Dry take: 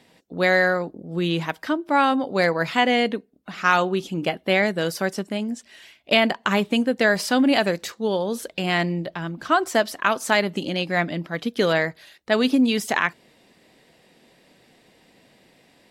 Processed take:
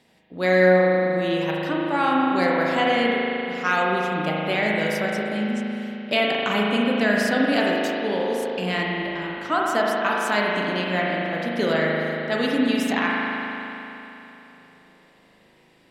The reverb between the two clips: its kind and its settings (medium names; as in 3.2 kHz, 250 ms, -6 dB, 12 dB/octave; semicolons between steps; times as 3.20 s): spring tank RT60 3.3 s, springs 38 ms, chirp 65 ms, DRR -3.5 dB; trim -5 dB